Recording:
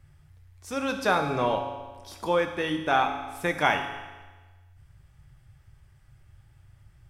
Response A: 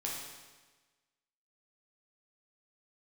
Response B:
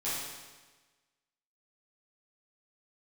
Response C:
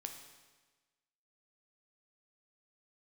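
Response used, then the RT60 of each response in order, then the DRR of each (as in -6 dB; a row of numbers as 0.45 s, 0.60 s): C; 1.3 s, 1.3 s, 1.3 s; -4.0 dB, -11.5 dB, 4.0 dB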